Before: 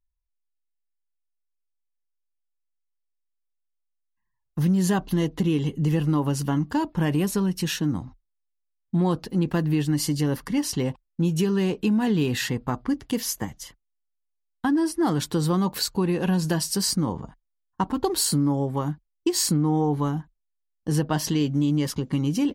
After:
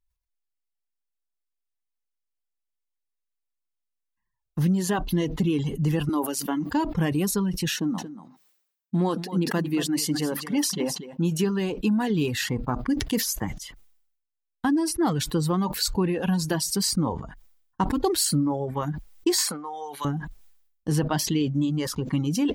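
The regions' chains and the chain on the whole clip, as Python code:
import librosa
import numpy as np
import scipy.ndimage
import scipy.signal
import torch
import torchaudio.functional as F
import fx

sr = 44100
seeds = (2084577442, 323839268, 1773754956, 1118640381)

y = fx.chain(x, sr, fx.highpass(hz=230.0, slope=24),
    fx.high_shelf(hz=11000.0, db=12.0), at=(6.09, 6.71))
y = fx.chain(y, sr, fx.brickwall_highpass(low_hz=150.0),
    fx.echo_single(ms=230, db=-9.0), at=(7.75, 11.44))
y = fx.chain(y, sr, fx.highpass(hz=820.0, slope=12),
    fx.band_squash(depth_pct=70), at=(19.38, 20.05))
y = fx.dereverb_blind(y, sr, rt60_s=1.1)
y = fx.sustainer(y, sr, db_per_s=72.0)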